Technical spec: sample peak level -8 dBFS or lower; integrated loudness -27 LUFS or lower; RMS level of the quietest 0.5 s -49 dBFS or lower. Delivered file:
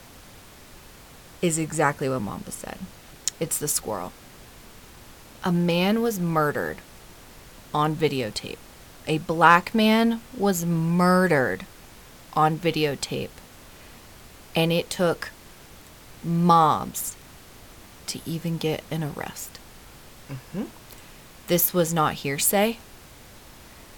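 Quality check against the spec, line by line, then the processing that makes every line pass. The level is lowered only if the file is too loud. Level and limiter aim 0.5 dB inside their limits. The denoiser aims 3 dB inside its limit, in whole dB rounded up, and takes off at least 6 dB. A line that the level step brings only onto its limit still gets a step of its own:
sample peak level -2.0 dBFS: fail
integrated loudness -23.5 LUFS: fail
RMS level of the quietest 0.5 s -47 dBFS: fail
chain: trim -4 dB; peak limiter -8.5 dBFS

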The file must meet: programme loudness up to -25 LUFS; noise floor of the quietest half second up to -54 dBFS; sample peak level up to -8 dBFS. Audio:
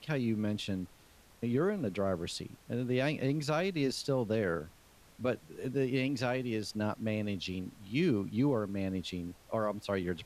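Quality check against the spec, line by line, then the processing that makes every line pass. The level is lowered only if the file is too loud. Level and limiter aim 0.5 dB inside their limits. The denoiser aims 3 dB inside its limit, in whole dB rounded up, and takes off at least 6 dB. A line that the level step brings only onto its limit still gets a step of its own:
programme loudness -34.0 LUFS: pass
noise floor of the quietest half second -60 dBFS: pass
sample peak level -20.0 dBFS: pass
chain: none needed

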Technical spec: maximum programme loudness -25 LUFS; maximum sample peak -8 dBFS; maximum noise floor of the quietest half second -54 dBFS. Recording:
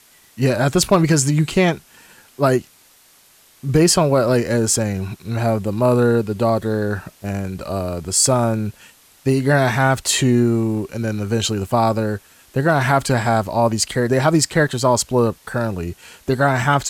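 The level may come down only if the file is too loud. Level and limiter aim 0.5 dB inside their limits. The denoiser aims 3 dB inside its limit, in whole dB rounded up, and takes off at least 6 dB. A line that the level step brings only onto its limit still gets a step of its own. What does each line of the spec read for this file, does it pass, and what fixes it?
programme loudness -18.5 LUFS: fail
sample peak -5.0 dBFS: fail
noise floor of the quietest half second -52 dBFS: fail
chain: trim -7 dB

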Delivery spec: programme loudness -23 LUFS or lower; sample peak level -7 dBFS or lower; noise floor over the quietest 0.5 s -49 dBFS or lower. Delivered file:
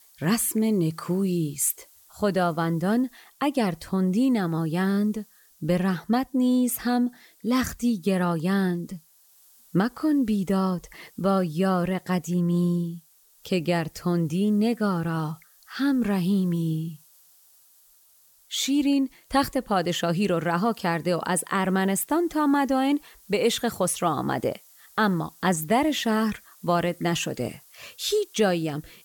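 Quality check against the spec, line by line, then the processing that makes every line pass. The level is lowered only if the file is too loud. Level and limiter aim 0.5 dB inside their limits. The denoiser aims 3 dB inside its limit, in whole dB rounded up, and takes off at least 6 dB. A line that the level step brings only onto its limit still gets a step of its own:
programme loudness -25.0 LUFS: pass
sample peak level -8.5 dBFS: pass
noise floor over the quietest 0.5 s -58 dBFS: pass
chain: none needed

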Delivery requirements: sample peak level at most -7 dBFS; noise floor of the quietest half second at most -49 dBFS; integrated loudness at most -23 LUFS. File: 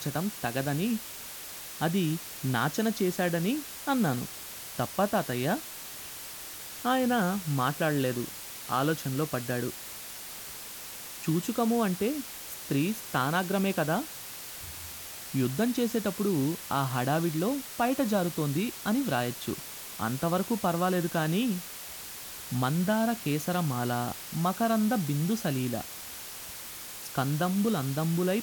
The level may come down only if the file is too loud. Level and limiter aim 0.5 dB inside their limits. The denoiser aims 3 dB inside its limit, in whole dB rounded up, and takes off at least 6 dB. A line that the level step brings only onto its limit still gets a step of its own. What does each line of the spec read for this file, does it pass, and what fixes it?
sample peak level -13.0 dBFS: pass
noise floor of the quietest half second -42 dBFS: fail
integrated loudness -30.0 LUFS: pass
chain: noise reduction 10 dB, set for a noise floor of -42 dBFS

